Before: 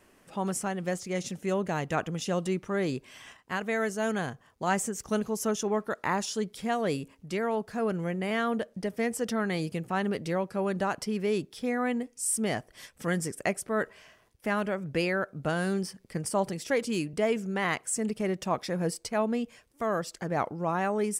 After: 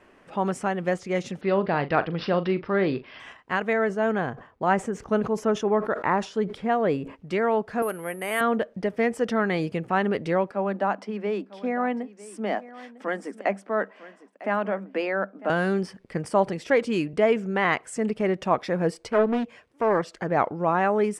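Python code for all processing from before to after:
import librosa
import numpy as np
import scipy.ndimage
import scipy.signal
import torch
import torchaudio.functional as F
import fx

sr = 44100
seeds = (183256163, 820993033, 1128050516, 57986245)

y = fx.chain(x, sr, fx.resample_bad(factor=4, down='none', up='filtered'),
    fx.doubler(ms=41.0, db=-13.0), at=(1.41, 3.2))
y = fx.chain(y, sr, fx.high_shelf(hz=2800.0, db=-10.5),
    fx.sustainer(db_per_s=130.0), at=(3.73, 7.16))
y = fx.chain(y, sr, fx.highpass(hz=710.0, slope=6),
    fx.resample_bad(factor=4, down='filtered', up='zero_stuff'), at=(7.82, 8.41))
y = fx.chain(y, sr, fx.cheby_ripple_highpass(hz=190.0, ripple_db=6),
    fx.high_shelf(hz=11000.0, db=-12.0),
    fx.echo_single(ms=951, db=-17.5), at=(10.51, 15.5))
y = fx.chain(y, sr, fx.highpass(hz=71.0, slope=12),
    fx.doppler_dist(depth_ms=0.43), at=(19.1, 20.15))
y = scipy.signal.sosfilt(scipy.signal.butter(2, 10000.0, 'lowpass', fs=sr, output='sos'), y)
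y = fx.bass_treble(y, sr, bass_db=-5, treble_db=-15)
y = F.gain(torch.from_numpy(y), 7.0).numpy()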